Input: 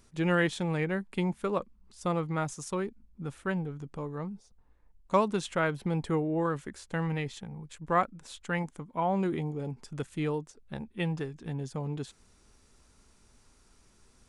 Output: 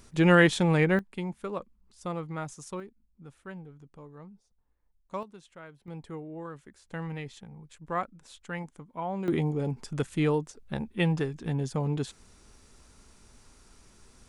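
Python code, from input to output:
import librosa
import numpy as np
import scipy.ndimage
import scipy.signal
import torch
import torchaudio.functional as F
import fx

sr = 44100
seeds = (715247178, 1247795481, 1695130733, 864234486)

y = fx.gain(x, sr, db=fx.steps((0.0, 7.0), (0.99, -4.5), (2.8, -11.0), (5.23, -19.0), (5.88, -11.0), (6.86, -5.0), (9.28, 5.5)))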